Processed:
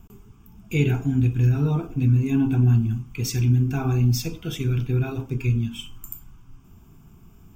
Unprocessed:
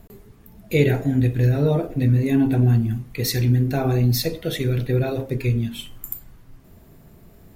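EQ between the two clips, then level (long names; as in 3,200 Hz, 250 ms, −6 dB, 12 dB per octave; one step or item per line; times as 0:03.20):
phaser with its sweep stopped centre 2,800 Hz, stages 8
0.0 dB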